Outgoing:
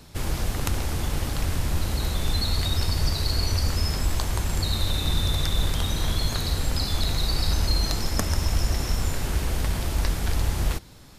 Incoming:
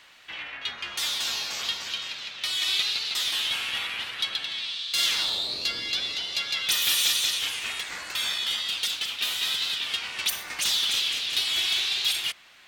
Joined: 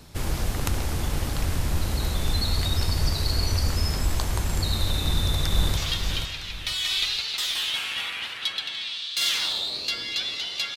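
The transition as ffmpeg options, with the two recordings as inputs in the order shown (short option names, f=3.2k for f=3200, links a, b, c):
-filter_complex "[0:a]apad=whole_dur=10.76,atrim=end=10.76,atrim=end=5.772[a];[1:a]atrim=start=1.538:end=6.53[b];[a][b]acrossfade=d=0.004:c1=hsin:c2=hsin,asplit=2[c][d];[d]afade=t=in:st=5.02:d=0.01,afade=t=out:st=5.77:d=0.01,aecho=0:1:480|960|1440|1920:0.530884|0.159265|0.0477796|0.0143339[e];[c][e]amix=inputs=2:normalize=0"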